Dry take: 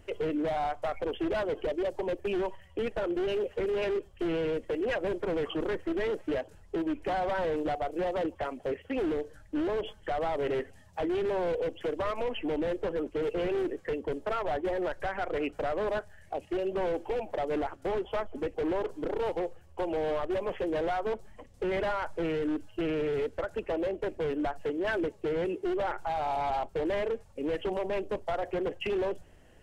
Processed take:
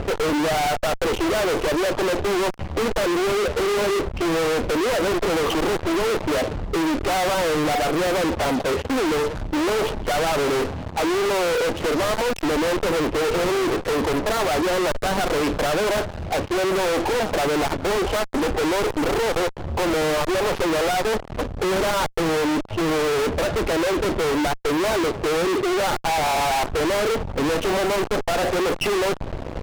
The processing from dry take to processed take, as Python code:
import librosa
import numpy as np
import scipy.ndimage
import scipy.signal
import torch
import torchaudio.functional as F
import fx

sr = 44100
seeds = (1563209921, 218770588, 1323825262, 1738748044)

y = scipy.ndimage.median_filter(x, 25, mode='constant')
y = scipy.signal.sosfilt(scipy.signal.butter(2, 4600.0, 'lowpass', fs=sr, output='sos'), y)
y = fx.fuzz(y, sr, gain_db=56.0, gate_db=-58.0)
y = y * 10.0 ** (-7.0 / 20.0)